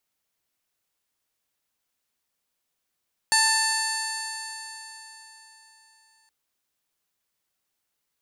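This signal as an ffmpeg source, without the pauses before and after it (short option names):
-f lavfi -i "aevalsrc='0.0631*pow(10,-3*t/3.96)*sin(2*PI*884.49*t)+0.0794*pow(10,-3*t/3.96)*sin(2*PI*1771.89*t)+0.0251*pow(10,-3*t/3.96)*sin(2*PI*2665.1*t)+0.00944*pow(10,-3*t/3.96)*sin(2*PI*3566.98*t)+0.0841*pow(10,-3*t/3.96)*sin(2*PI*4480.36*t)+0.0119*pow(10,-3*t/3.96)*sin(2*PI*5408*t)+0.0282*pow(10,-3*t/3.96)*sin(2*PI*6352.58*t)+0.0447*pow(10,-3*t/3.96)*sin(2*PI*7316.7*t)+0.00631*pow(10,-3*t/3.96)*sin(2*PI*8302.88*t)+0.0631*pow(10,-3*t/3.96)*sin(2*PI*9313.52*t)+0.00708*pow(10,-3*t/3.96)*sin(2*PI*10350.92*t)+0.00944*pow(10,-3*t/3.96)*sin(2*PI*11417.28*t)':d=2.97:s=44100"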